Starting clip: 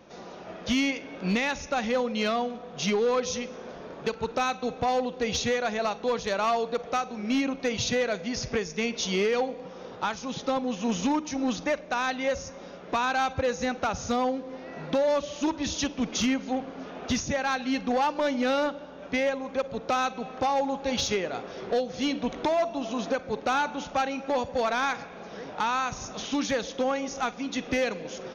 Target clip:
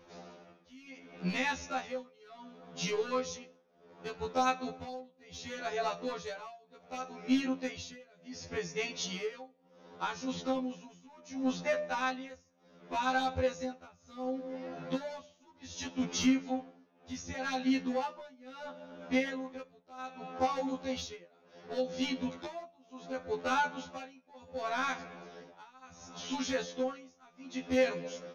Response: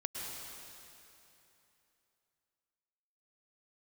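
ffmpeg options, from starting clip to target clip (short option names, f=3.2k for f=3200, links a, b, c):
-af "bandreject=f=300:t=h:w=4,bandreject=f=600:t=h:w=4,bandreject=f=900:t=h:w=4,bandreject=f=1.2k:t=h:w=4,bandreject=f=1.5k:t=h:w=4,bandreject=f=1.8k:t=h:w=4,bandreject=f=2.1k:t=h:w=4,bandreject=f=2.4k:t=h:w=4,bandreject=f=2.7k:t=h:w=4,bandreject=f=3k:t=h:w=4,bandreject=f=3.3k:t=h:w=4,bandreject=f=3.6k:t=h:w=4,bandreject=f=3.9k:t=h:w=4,bandreject=f=4.2k:t=h:w=4,bandreject=f=4.5k:t=h:w=4,bandreject=f=4.8k:t=h:w=4,tremolo=f=0.68:d=0.96,afftfilt=real='re*2*eq(mod(b,4),0)':imag='im*2*eq(mod(b,4),0)':win_size=2048:overlap=0.75,volume=-2.5dB"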